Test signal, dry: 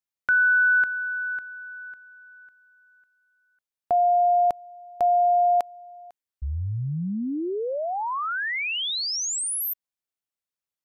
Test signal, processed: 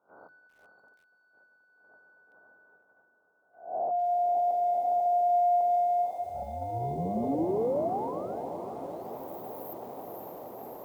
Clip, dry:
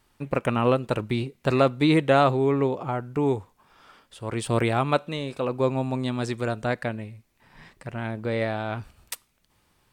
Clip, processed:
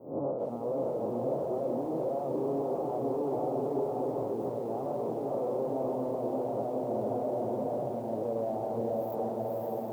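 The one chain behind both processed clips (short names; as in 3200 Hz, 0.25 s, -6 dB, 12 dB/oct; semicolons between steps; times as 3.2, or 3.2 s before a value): spectral swells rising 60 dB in 0.44 s; high shelf 4000 Hz -7.5 dB; compressor 10:1, threshold -31 dBFS; diffused feedback echo 0.532 s, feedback 67%, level -4 dB; sine folder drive 11 dB, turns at -17.5 dBFS; weighting filter A; limiter -20.5 dBFS; inverse Chebyshev band-stop 1700–9700 Hz, stop band 50 dB; darkening echo 0.201 s, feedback 18%, low-pass 1400 Hz, level -17.5 dB; gate -59 dBFS, range -7 dB; notches 50/100/150/200/250/300/350 Hz; lo-fi delay 0.381 s, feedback 80%, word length 9-bit, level -12.5 dB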